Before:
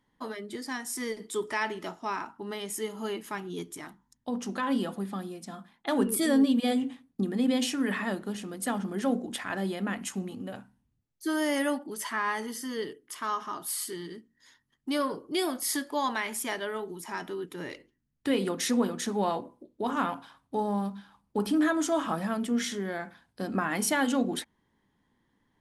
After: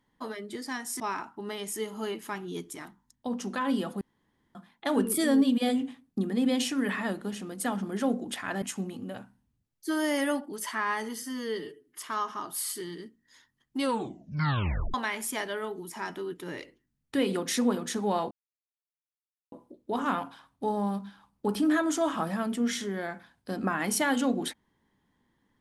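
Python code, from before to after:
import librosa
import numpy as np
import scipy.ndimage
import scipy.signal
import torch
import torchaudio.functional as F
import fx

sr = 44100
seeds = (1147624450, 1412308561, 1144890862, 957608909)

y = fx.edit(x, sr, fx.cut(start_s=1.0, length_s=1.02),
    fx.room_tone_fill(start_s=5.03, length_s=0.54),
    fx.cut(start_s=9.64, length_s=0.36),
    fx.stretch_span(start_s=12.6, length_s=0.52, factor=1.5),
    fx.tape_stop(start_s=14.89, length_s=1.17),
    fx.insert_silence(at_s=19.43, length_s=1.21), tone=tone)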